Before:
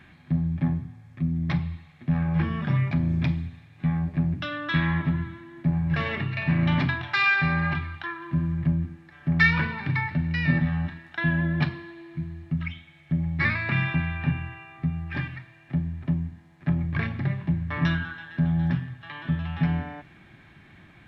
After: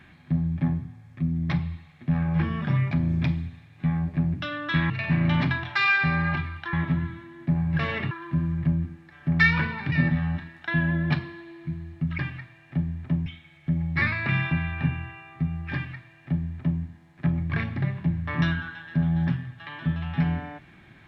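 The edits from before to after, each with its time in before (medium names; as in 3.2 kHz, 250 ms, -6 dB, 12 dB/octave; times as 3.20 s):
4.90–6.28 s: move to 8.11 s
9.92–10.42 s: delete
15.17–16.24 s: copy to 12.69 s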